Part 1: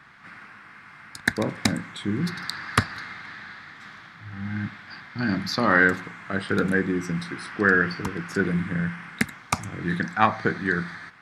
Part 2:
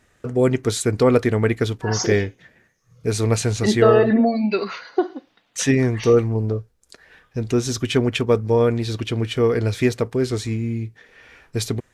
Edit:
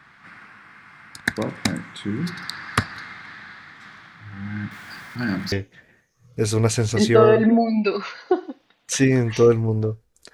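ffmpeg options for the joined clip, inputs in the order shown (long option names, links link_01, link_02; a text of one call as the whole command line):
ffmpeg -i cue0.wav -i cue1.wav -filter_complex "[0:a]asettb=1/sr,asplit=3[link_01][link_02][link_03];[link_01]atrim=end=4.714[link_04];[link_02]atrim=start=4.71:end=5.52,asetpts=PTS-STARTPTS,afade=type=in:duration=0.004:curve=qsin,afade=type=out:start_time=0.806:duration=0.004:curve=qsin,aeval=exprs='val(0)+0.5*0.00841*sgn(val(0))':channel_layout=same[link_05];[link_03]atrim=start=5.516[link_06];[link_04][link_05]acrossfade=duration=0.004:curve1=hsin:curve2=qsin[link_07];[link_07][link_06]acrossfade=duration=0.004:curve1=qsin:curve2=hsin,apad=whole_dur=10.33,atrim=end=10.33,atrim=end=5.522[link_08];[1:a]atrim=start=2.188:end=7[link_09];[link_08][link_09]acrossfade=duration=0.004:curve1=hsin:curve2=hsin" out.wav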